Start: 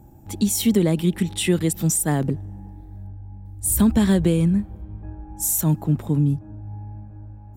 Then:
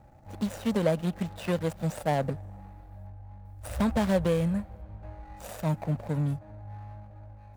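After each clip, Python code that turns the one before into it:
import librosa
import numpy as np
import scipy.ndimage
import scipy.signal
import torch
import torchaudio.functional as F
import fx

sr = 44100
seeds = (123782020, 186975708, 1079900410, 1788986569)

y = scipy.ndimage.median_filter(x, 41, mode='constant')
y = fx.low_shelf_res(y, sr, hz=450.0, db=-7.5, q=3.0)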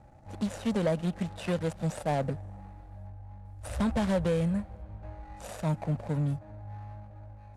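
y = scipy.signal.sosfilt(scipy.signal.butter(4, 11000.0, 'lowpass', fs=sr, output='sos'), x)
y = 10.0 ** (-19.5 / 20.0) * np.tanh(y / 10.0 ** (-19.5 / 20.0))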